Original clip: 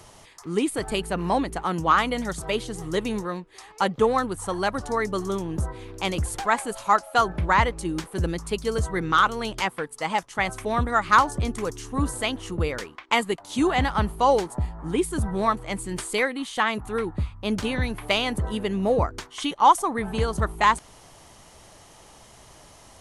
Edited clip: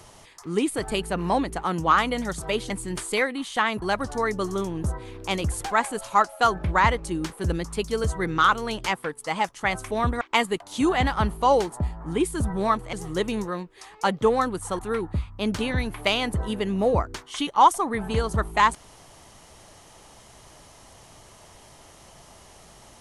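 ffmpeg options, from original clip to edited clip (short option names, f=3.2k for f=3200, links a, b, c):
-filter_complex "[0:a]asplit=6[a][b][c][d][e][f];[a]atrim=end=2.702[g];[b]atrim=start=15.708:end=16.832[h];[c]atrim=start=4.558:end=10.952[i];[d]atrim=start=12.988:end=15.712[j];[e]atrim=start=2.698:end=4.562[k];[f]atrim=start=16.828[l];[g][h]acrossfade=d=0.004:c1=hsin:c2=hsin[m];[m][i]acrossfade=d=0.004:c1=hsin:c2=hsin[n];[n][j]acrossfade=d=0.004:c1=hsin:c2=hsin[o];[o][k]acrossfade=d=0.004:c1=hsin:c2=hsin[p];[p][l]acrossfade=d=0.004:c1=hsin:c2=hsin"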